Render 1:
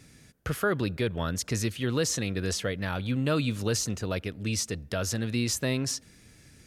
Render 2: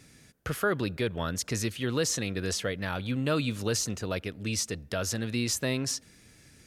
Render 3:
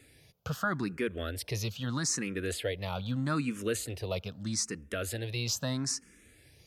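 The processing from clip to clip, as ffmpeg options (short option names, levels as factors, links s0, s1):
-af "lowshelf=f=200:g=-4"
-filter_complex "[0:a]asplit=2[s0][s1];[s1]afreqshift=0.79[s2];[s0][s2]amix=inputs=2:normalize=1"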